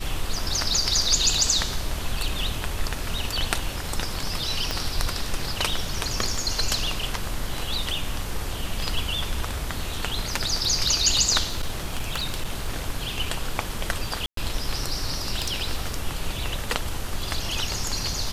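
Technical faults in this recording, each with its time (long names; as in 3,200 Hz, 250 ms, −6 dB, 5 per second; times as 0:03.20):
0:04.71: click −10 dBFS
0:11.46–0:12.73: clipping −21 dBFS
0:14.26–0:14.37: drop-out 113 ms
0:15.42–0:15.94: clipping −18.5 dBFS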